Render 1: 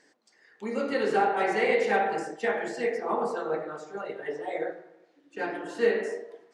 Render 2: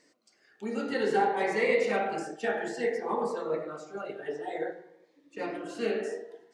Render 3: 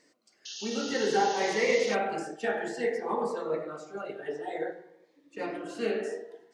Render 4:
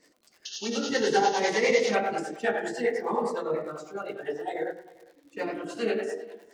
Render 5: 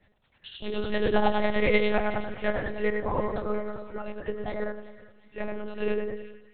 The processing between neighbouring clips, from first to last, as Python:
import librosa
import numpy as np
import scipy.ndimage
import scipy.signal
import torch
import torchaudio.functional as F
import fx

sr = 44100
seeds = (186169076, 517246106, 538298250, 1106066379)

y1 = fx.notch_cascade(x, sr, direction='rising', hz=0.55)
y2 = fx.spec_paint(y1, sr, seeds[0], shape='noise', start_s=0.45, length_s=1.5, low_hz=2600.0, high_hz=6800.0, level_db=-41.0)
y3 = fx.dmg_crackle(y2, sr, seeds[1], per_s=130.0, level_db=-51.0)
y3 = fx.harmonic_tremolo(y3, sr, hz=9.9, depth_pct=70, crossover_hz=400.0)
y3 = y3 + 10.0 ** (-23.5 / 20.0) * np.pad(y3, (int(403 * sr / 1000.0), 0))[:len(y3)]
y3 = y3 * librosa.db_to_amplitude(6.0)
y4 = fx.fade_out_tail(y3, sr, length_s=0.6)
y4 = fx.lpc_monotone(y4, sr, seeds[2], pitch_hz=210.0, order=8)
y4 = fx.echo_split(y4, sr, split_hz=1200.0, low_ms=114, high_ms=367, feedback_pct=52, wet_db=-15.5)